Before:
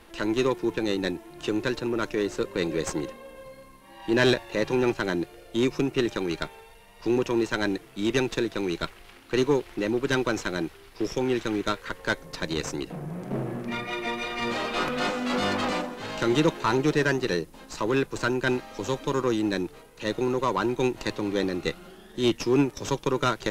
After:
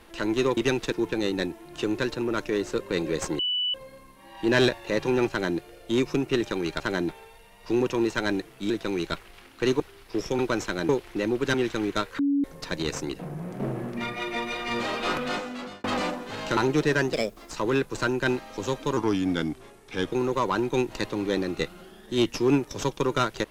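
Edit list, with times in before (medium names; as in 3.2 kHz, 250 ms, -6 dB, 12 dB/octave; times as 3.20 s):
3.04–3.39 s: bleep 2.97 kHz -23.5 dBFS
4.94–5.23 s: copy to 6.45 s
8.06–8.41 s: move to 0.57 s
9.51–10.16 s: swap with 10.66–11.25 s
11.90–12.15 s: bleep 282 Hz -20 dBFS
14.86–15.55 s: fade out
16.28–16.67 s: delete
17.23–17.72 s: speed 129%
19.18–20.18 s: speed 87%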